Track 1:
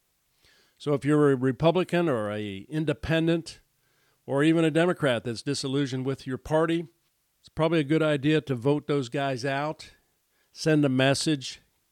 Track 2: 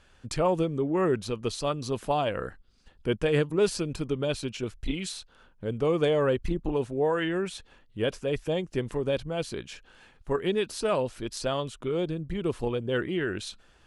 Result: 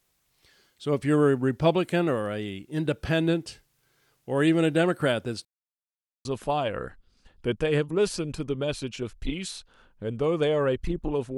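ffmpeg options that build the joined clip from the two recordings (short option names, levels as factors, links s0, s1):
-filter_complex "[0:a]apad=whole_dur=11.37,atrim=end=11.37,asplit=2[s0][s1];[s0]atrim=end=5.45,asetpts=PTS-STARTPTS,afade=t=out:st=5.446:d=0.004:c=hsin[s2];[s1]atrim=start=5.45:end=6.25,asetpts=PTS-STARTPTS,volume=0[s3];[1:a]atrim=start=1.86:end=6.98,asetpts=PTS-STARTPTS,afade=t=in:d=0.004:c=hsin[s4];[s2][s3][s4]concat=n=3:v=0:a=1"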